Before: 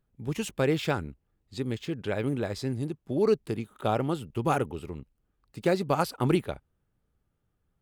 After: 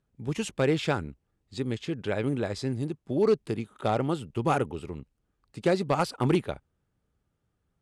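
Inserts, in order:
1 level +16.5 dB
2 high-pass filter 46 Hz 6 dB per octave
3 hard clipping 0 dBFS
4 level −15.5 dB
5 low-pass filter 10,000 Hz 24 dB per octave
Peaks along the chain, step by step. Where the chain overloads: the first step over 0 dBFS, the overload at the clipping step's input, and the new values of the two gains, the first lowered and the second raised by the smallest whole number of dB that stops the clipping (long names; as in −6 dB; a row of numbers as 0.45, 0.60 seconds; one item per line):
+5.0, +5.0, 0.0, −15.5, −15.0 dBFS
step 1, 5.0 dB
step 1 +11.5 dB, step 4 −10.5 dB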